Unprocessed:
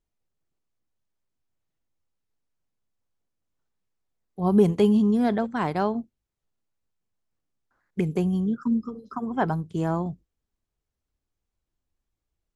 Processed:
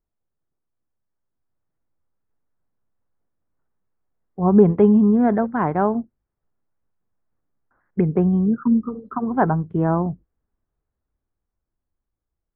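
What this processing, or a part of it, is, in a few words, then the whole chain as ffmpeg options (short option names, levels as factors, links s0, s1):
action camera in a waterproof case: -af "lowpass=f=1700:w=0.5412,lowpass=f=1700:w=1.3066,dynaudnorm=f=200:g=17:m=2.11" -ar 48000 -c:a aac -b:a 128k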